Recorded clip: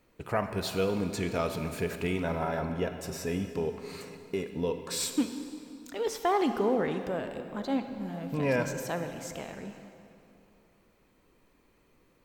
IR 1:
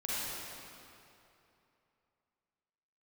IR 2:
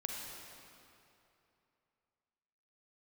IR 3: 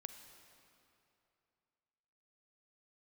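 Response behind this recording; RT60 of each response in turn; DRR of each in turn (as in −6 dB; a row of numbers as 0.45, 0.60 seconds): 3; 2.9, 2.8, 2.8 seconds; −9.0, −0.5, 7.5 decibels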